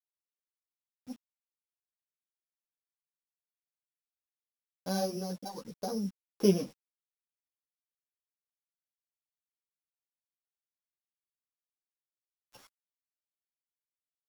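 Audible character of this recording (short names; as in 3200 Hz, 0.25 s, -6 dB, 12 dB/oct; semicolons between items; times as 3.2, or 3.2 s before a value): a buzz of ramps at a fixed pitch in blocks of 8 samples; tremolo triangle 0.52 Hz, depth 50%; a quantiser's noise floor 10-bit, dither none; a shimmering, thickened sound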